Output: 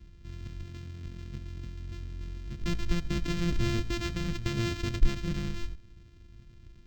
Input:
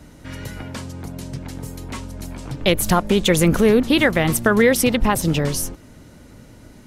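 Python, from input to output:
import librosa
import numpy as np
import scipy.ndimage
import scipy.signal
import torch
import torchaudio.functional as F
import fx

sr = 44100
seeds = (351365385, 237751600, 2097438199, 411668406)

p1 = np.r_[np.sort(x[:len(x) // 128 * 128].reshape(-1, 128), axis=1).ravel(), x[len(x) // 128 * 128:]]
p2 = fx.tone_stack(p1, sr, knobs='10-0-1')
p3 = p2 + fx.echo_single(p2, sr, ms=80, db=-20.5, dry=0)
p4 = np.interp(np.arange(len(p3)), np.arange(len(p3))[::4], p3[::4])
y = p4 * librosa.db_to_amplitude(4.5)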